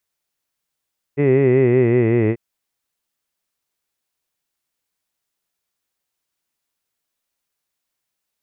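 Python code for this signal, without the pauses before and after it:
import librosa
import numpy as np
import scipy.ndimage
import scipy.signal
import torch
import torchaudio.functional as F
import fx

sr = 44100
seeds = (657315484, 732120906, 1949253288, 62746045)

y = fx.vowel(sr, seeds[0], length_s=1.19, word='hid', hz=139.0, glide_st=-4.0, vibrato_hz=5.3, vibrato_st=0.9)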